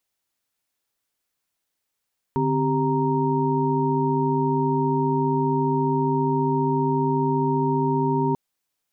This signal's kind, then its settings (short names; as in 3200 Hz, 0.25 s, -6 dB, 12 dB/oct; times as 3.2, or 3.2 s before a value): chord D3/C4/G4/A#5 sine, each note -24.5 dBFS 5.99 s